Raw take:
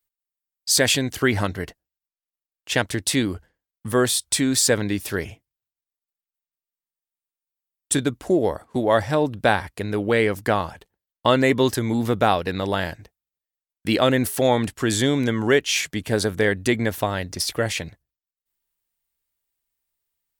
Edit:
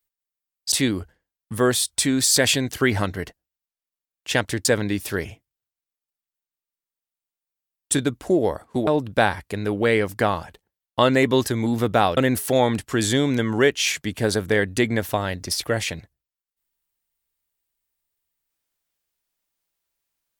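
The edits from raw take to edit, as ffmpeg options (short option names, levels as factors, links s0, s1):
-filter_complex "[0:a]asplit=6[s0][s1][s2][s3][s4][s5];[s0]atrim=end=0.722[s6];[s1]atrim=start=3.058:end=4.652[s7];[s2]atrim=start=0.718:end=3.062[s8];[s3]atrim=start=4.648:end=8.872[s9];[s4]atrim=start=9.138:end=12.442[s10];[s5]atrim=start=14.058[s11];[s6][s7]acrossfade=d=0.004:c1=hsin:c2=hsin[s12];[s12][s8]acrossfade=d=0.004:c1=hsin:c2=hsin[s13];[s13][s9]acrossfade=d=0.004:c1=hsin:c2=hsin[s14];[s14][s10]acrossfade=d=0.004:c1=hsin:c2=hsin[s15];[s15][s11]acrossfade=d=0.004:c1=hsin:c2=hsin"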